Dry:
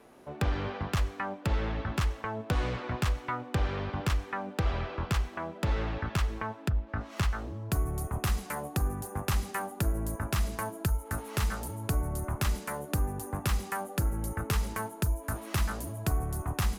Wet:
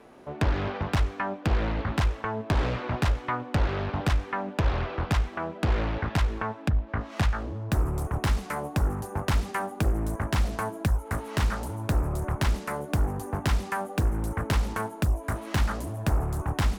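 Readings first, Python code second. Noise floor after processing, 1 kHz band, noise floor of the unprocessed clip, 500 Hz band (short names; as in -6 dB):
-42 dBFS, +4.5 dB, -47 dBFS, +4.5 dB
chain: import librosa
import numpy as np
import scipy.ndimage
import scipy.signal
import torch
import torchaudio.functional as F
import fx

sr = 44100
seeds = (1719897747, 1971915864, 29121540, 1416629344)

y = fx.high_shelf(x, sr, hz=7100.0, db=-9.0)
y = fx.doppler_dist(y, sr, depth_ms=0.93)
y = y * 10.0 ** (4.5 / 20.0)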